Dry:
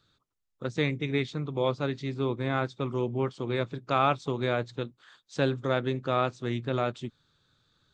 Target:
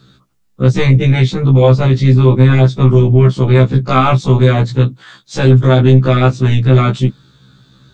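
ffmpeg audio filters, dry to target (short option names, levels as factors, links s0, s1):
-af "equalizer=f=170:t=o:w=1.5:g=13,apsyclip=15.8,afftfilt=real='re*1.73*eq(mod(b,3),0)':imag='im*1.73*eq(mod(b,3),0)':win_size=2048:overlap=0.75,volume=0.631"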